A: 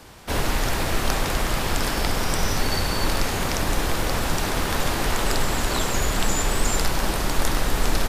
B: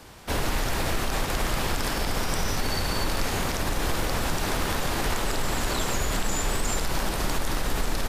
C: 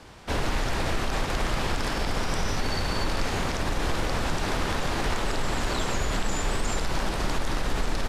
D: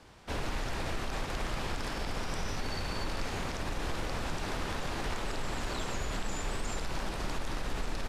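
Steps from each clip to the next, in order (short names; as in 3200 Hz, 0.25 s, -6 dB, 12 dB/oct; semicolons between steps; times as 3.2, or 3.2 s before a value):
limiter -14.5 dBFS, peak gain reduction 8.5 dB; gain -1.5 dB
air absorption 53 m
rattling part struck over -31 dBFS, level -31 dBFS; gain -8 dB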